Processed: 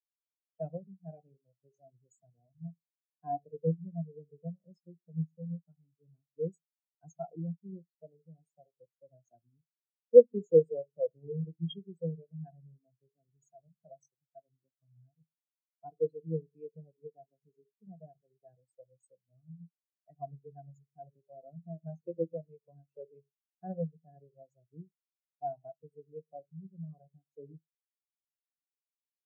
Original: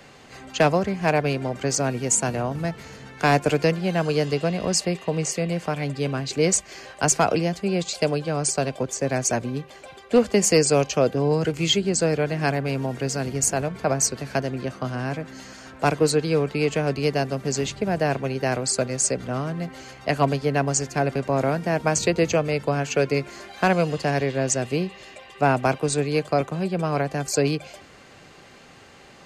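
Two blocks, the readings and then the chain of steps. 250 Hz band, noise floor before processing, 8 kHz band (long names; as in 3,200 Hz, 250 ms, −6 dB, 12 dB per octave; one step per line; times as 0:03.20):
−18.0 dB, −48 dBFS, below −40 dB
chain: rectangular room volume 520 cubic metres, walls furnished, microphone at 0.79 metres
every bin expanded away from the loudest bin 4 to 1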